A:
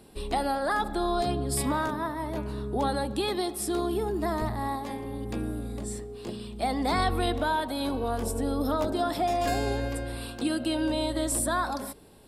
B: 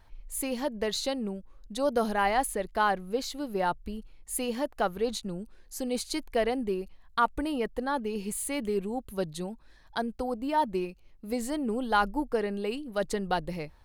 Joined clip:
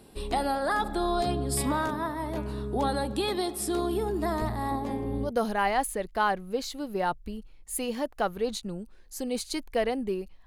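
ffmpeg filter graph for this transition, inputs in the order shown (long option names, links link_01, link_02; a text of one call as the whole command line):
ffmpeg -i cue0.wav -i cue1.wav -filter_complex "[0:a]asettb=1/sr,asplit=3[link_01][link_02][link_03];[link_01]atrim=end=4.714[link_04];[link_02]atrim=start=4.71:end=5.32,asetpts=PTS-STARTPTS,afade=type=in:duration=0.004:curve=qsin,afade=type=out:start_time=0.606:duration=0.004:curve=qsin,tiltshelf=frequency=970:gain=5.5[link_05];[link_03]atrim=start=5.316[link_06];[link_04][link_05]acrossfade=duration=0.004:curve1=hsin:curve2=qsin[link_07];[link_07][link_06]acrossfade=duration=0.004:curve1=qsin:curve2=hsin,apad=whole_dur=10.46,atrim=end=10.46,atrim=end=5.32,asetpts=PTS-STARTPTS[link_08];[1:a]atrim=start=1.82:end=7.06,asetpts=PTS-STARTPTS[link_09];[link_08][link_09]acrossfade=duration=0.1:curve1=tri:curve2=tri" out.wav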